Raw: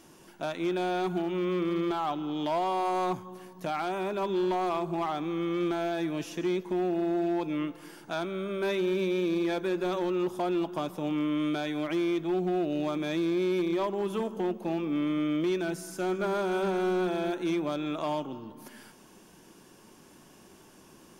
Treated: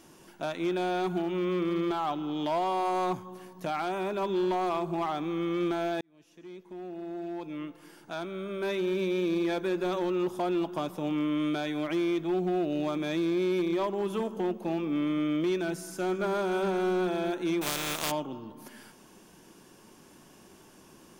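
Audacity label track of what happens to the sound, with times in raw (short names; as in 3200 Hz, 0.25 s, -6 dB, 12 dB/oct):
6.010000	9.320000	fade in
17.610000	18.100000	spectral contrast lowered exponent 0.3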